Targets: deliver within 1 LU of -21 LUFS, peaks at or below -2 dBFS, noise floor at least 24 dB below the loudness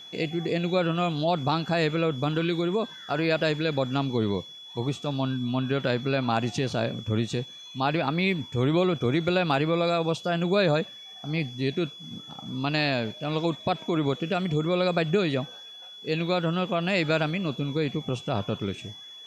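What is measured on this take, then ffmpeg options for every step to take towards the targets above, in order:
steady tone 3.4 kHz; tone level -42 dBFS; loudness -27.0 LUFS; peak level -12.0 dBFS; loudness target -21.0 LUFS
-> -af "bandreject=f=3400:w=30"
-af "volume=2"

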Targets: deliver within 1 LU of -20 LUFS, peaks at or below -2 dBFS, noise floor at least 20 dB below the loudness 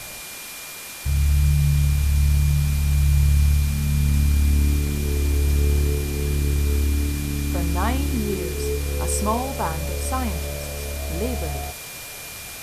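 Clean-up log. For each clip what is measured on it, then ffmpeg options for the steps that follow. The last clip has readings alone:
steady tone 2.4 kHz; tone level -41 dBFS; noise floor -36 dBFS; noise floor target -43 dBFS; loudness -22.5 LUFS; peak level -8.0 dBFS; loudness target -20.0 LUFS
-> -af "bandreject=f=2400:w=30"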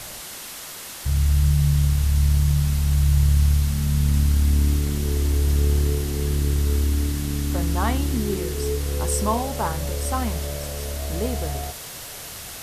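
steady tone not found; noise floor -37 dBFS; noise floor target -43 dBFS
-> -af "afftdn=nr=6:nf=-37"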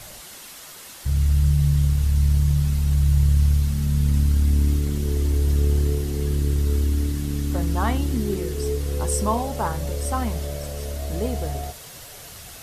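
noise floor -41 dBFS; noise floor target -43 dBFS
-> -af "afftdn=nr=6:nf=-41"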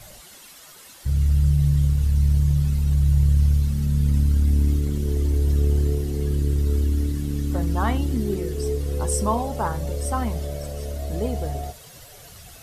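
noise floor -46 dBFS; loudness -22.5 LUFS; peak level -9.0 dBFS; loudness target -20.0 LUFS
-> -af "volume=1.33"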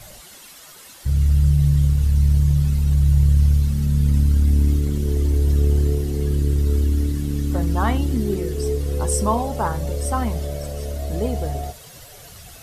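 loudness -20.5 LUFS; peak level -6.5 dBFS; noise floor -43 dBFS

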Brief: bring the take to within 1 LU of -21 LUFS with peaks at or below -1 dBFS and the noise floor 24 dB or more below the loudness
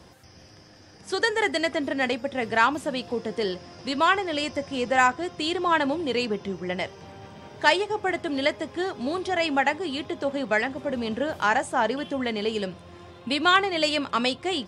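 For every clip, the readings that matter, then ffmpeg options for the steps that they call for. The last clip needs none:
loudness -25.5 LUFS; peak level -6.0 dBFS; loudness target -21.0 LUFS
-> -af "volume=1.68"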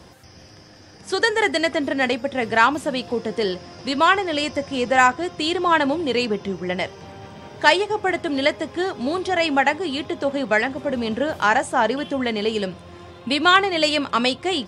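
loudness -21.0 LUFS; peak level -1.5 dBFS; noise floor -46 dBFS

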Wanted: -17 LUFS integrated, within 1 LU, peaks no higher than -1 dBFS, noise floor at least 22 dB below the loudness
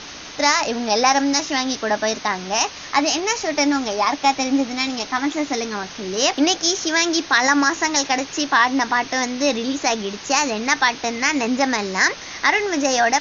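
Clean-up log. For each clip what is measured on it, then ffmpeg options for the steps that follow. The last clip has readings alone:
noise floor -36 dBFS; noise floor target -42 dBFS; loudness -19.5 LUFS; peak level -2.5 dBFS; loudness target -17.0 LUFS
-> -af "afftdn=nr=6:nf=-36"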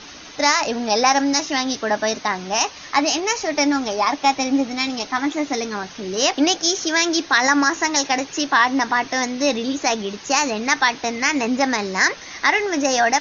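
noise floor -39 dBFS; noise floor target -42 dBFS
-> -af "afftdn=nr=6:nf=-39"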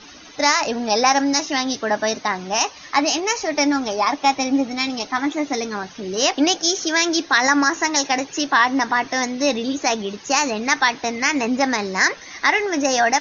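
noise floor -42 dBFS; loudness -19.5 LUFS; peak level -2.5 dBFS; loudness target -17.0 LUFS
-> -af "volume=1.33,alimiter=limit=0.891:level=0:latency=1"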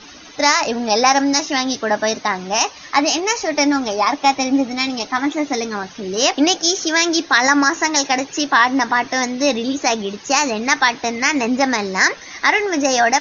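loudness -17.0 LUFS; peak level -1.0 dBFS; noise floor -40 dBFS

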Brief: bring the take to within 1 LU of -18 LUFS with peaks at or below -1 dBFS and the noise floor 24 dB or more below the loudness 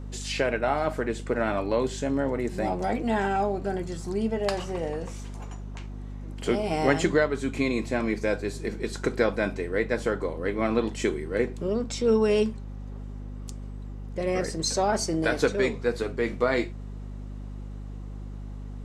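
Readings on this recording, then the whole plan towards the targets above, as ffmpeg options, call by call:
hum 50 Hz; highest harmonic 250 Hz; hum level -34 dBFS; loudness -27.0 LUFS; peak level -7.5 dBFS; loudness target -18.0 LUFS
-> -af "bandreject=f=50:t=h:w=4,bandreject=f=100:t=h:w=4,bandreject=f=150:t=h:w=4,bandreject=f=200:t=h:w=4,bandreject=f=250:t=h:w=4"
-af "volume=2.82,alimiter=limit=0.891:level=0:latency=1"

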